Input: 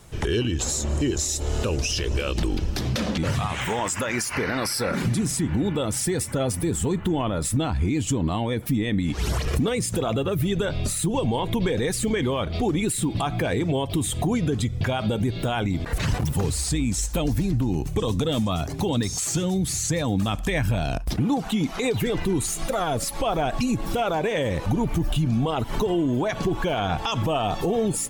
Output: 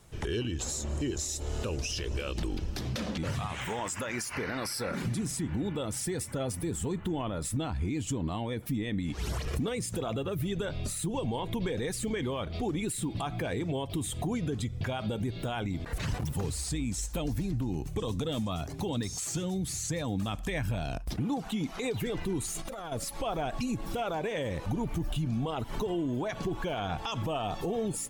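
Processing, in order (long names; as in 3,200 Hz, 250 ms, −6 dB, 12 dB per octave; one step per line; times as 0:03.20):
0:22.51–0:22.92: compressor whose output falls as the input rises −30 dBFS, ratio −1
level −8.5 dB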